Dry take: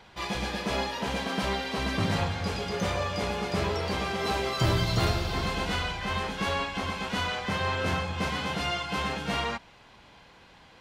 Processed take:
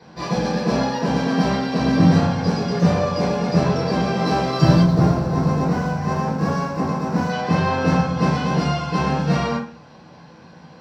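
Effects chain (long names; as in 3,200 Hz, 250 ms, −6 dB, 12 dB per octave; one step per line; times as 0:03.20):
0:04.82–0:07.30: running median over 15 samples
convolution reverb RT60 0.35 s, pre-delay 3 ms, DRR −6.5 dB
level −7.5 dB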